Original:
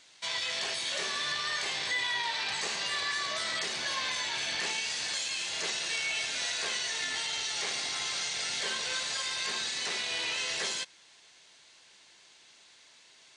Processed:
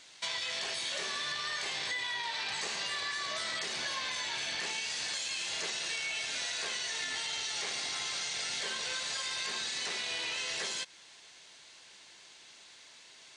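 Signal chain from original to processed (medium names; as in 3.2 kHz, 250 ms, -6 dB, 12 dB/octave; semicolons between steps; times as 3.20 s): compression, threshold -36 dBFS, peak gain reduction 8.5 dB; trim +3 dB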